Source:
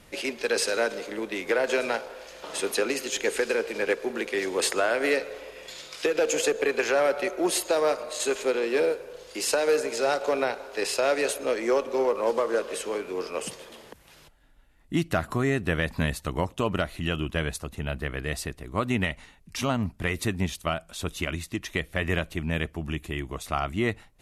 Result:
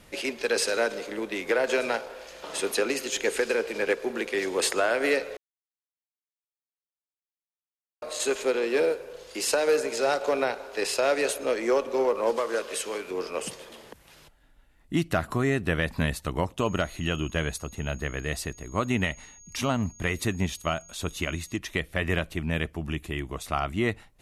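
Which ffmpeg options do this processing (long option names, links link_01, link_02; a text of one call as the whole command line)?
ffmpeg -i in.wav -filter_complex "[0:a]asettb=1/sr,asplit=3[link_01][link_02][link_03];[link_01]atrim=end=12.364[link_04];[link_02]atrim=start=12.36:end=13.11,asetpts=PTS-STARTPTS,afade=type=in:duration=0.004:curve=qsin,afade=type=out:start_time=0.746:duration=0.004:curve=qsin,tiltshelf=frequency=1400:gain=-4[link_05];[link_03]atrim=start=13.106[link_06];[link_04][link_05]acrossfade=duration=0.004:curve1=hsin:curve2=qsin[link_07];[link_07][link_06]acrossfade=duration=0.004:curve1=qsin:curve2=hsin,asettb=1/sr,asplit=3[link_08][link_09][link_10];[link_08]atrim=end=16.594[link_11];[link_09]atrim=start=16.59:end=21.58,asetpts=PTS-STARTPTS,afade=type=in:duration=0.004:curve=qsin,afade=type=out:start_time=4.986:duration=0.004:curve=qsin,aeval=exprs='val(0)+0.00355*sin(2*PI*6600*n/s)':channel_layout=same[link_12];[link_10]atrim=start=21.576[link_13];[link_11][link_12]acrossfade=duration=0.004:curve1=hsin:curve2=qsin[link_14];[link_14][link_13]acrossfade=duration=0.004:curve1=qsin:curve2=hsin,asplit=3[link_15][link_16][link_17];[link_15]atrim=end=5.37,asetpts=PTS-STARTPTS,afade=type=out:start_time=5.366:duration=0.004:curve=hsin[link_18];[link_16]atrim=start=5.37:end=8.02,asetpts=PTS-STARTPTS,volume=0[link_19];[link_17]atrim=start=8.02,asetpts=PTS-STARTPTS,afade=type=in:duration=0.004:curve=hsin[link_20];[link_18][link_19][link_20]concat=n=3:v=0:a=1" out.wav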